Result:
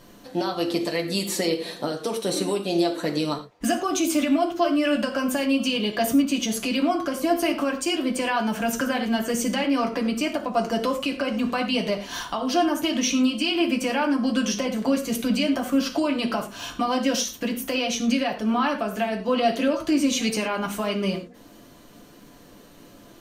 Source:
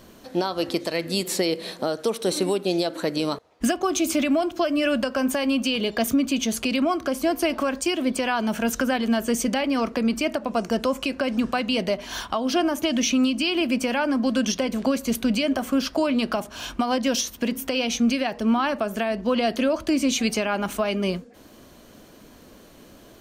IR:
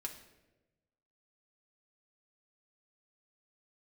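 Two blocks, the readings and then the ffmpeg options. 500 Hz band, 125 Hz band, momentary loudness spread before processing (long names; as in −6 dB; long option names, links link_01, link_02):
−1.0 dB, 0.0 dB, 5 LU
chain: -filter_complex "[1:a]atrim=start_sample=2205,atrim=end_sample=3969,asetrate=32193,aresample=44100[link_01];[0:a][link_01]afir=irnorm=-1:irlink=0"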